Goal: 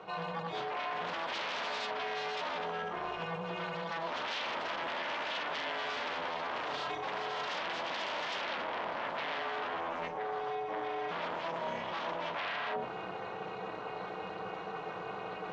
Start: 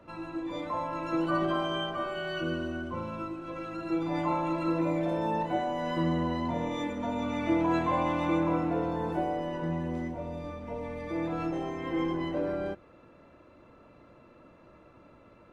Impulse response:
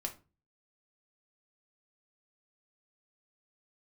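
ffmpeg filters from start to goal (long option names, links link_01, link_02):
-filter_complex "[1:a]atrim=start_sample=2205[link_01];[0:a][link_01]afir=irnorm=-1:irlink=0,aeval=exprs='0.188*sin(PI/2*7.94*val(0)/0.188)':channel_layout=same,highpass=frequency=400:width=0.5412,highpass=frequency=400:width=1.3066,equalizer=frequency=480:width_type=q:width=4:gain=-3,equalizer=frequency=790:width_type=q:width=4:gain=7,equalizer=frequency=3200:width_type=q:width=4:gain=4,lowpass=frequency=6400:width=0.5412,lowpass=frequency=6400:width=1.3066,aeval=exprs='val(0)*sin(2*PI*160*n/s)':channel_layout=same,areverse,acompressor=threshold=-36dB:ratio=5,areverse"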